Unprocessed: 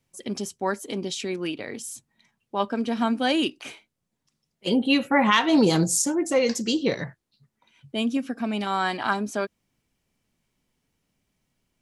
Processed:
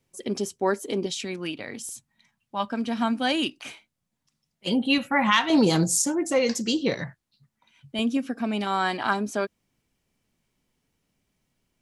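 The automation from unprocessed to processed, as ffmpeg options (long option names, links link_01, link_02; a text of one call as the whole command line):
ffmpeg -i in.wav -af "asetnsamples=nb_out_samples=441:pad=0,asendcmd='1.06 equalizer g -5.5;1.89 equalizer g -13.5;2.72 equalizer g -6.5;4.98 equalizer g -13.5;5.5 equalizer g -2;7.01 equalizer g -8.5;7.99 equalizer g 1',equalizer=frequency=410:width_type=o:width=0.77:gain=5.5" out.wav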